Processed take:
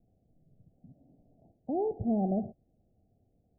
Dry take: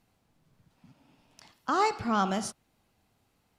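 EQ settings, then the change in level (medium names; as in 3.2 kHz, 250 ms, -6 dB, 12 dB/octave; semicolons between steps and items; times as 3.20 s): steep low-pass 740 Hz 96 dB/octave; bass shelf 150 Hz +6 dB; 0.0 dB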